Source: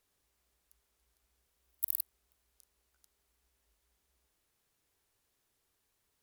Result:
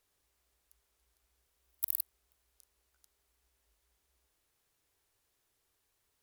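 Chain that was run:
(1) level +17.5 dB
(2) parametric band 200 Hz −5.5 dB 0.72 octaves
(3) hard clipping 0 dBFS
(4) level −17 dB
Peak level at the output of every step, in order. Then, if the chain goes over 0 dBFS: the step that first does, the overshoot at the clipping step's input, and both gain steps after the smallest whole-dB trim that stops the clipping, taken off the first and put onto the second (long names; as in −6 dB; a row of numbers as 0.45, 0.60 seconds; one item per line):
+4.0, +4.0, 0.0, −17.0 dBFS
step 1, 4.0 dB
step 1 +13.5 dB, step 4 −13 dB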